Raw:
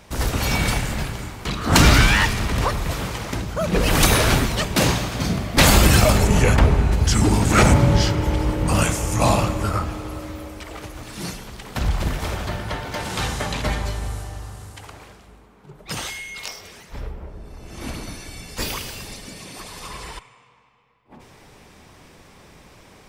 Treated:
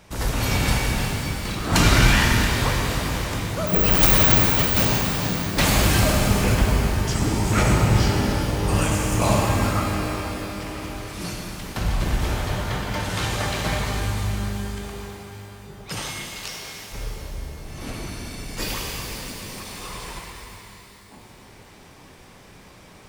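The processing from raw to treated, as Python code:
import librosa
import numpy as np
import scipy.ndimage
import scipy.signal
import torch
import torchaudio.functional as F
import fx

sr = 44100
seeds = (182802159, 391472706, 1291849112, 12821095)

y = fx.rider(x, sr, range_db=3, speed_s=2.0)
y = fx.resample_bad(y, sr, factor=2, down='filtered', up='zero_stuff', at=(3.67, 4.83))
y = fx.rev_shimmer(y, sr, seeds[0], rt60_s=3.4, semitones=12, shimmer_db=-8, drr_db=-0.5)
y = y * librosa.db_to_amplitude(-6.0)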